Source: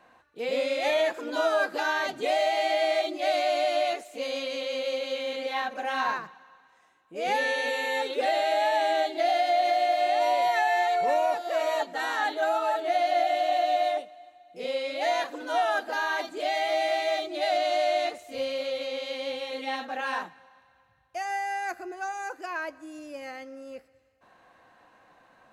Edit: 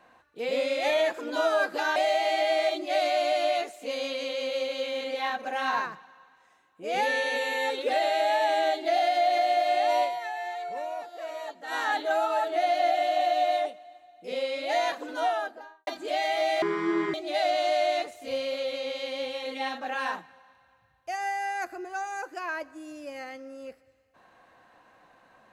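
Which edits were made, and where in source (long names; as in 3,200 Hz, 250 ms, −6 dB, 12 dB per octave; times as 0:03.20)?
0:01.96–0:02.28: remove
0:10.36–0:12.06: duck −10 dB, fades 0.40 s exponential
0:15.44–0:16.19: fade out and dull
0:16.94–0:17.21: play speed 52%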